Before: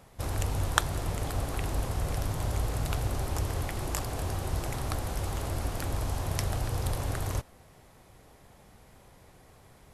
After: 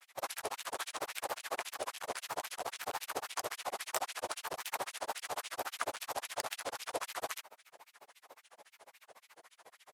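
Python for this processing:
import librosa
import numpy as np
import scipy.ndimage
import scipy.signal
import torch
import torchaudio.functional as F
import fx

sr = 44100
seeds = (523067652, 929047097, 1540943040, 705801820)

y = fx.granulator(x, sr, seeds[0], grain_ms=63.0, per_s=14.0, spray_ms=20.0, spread_st=3)
y = np.clip(y, -10.0 ** (-28.5 / 20.0), 10.0 ** (-28.5 / 20.0))
y = fx.filter_lfo_highpass(y, sr, shape='sine', hz=3.7, low_hz=530.0, high_hz=2700.0, q=1.6)
y = F.gain(torch.from_numpy(y), 4.5).numpy()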